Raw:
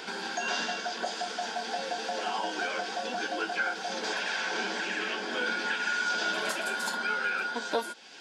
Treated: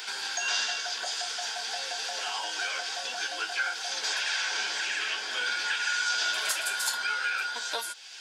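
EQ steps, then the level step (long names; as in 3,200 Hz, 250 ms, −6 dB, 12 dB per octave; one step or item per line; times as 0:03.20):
high-pass filter 980 Hz 6 dB per octave
spectral tilt +3 dB per octave
0.0 dB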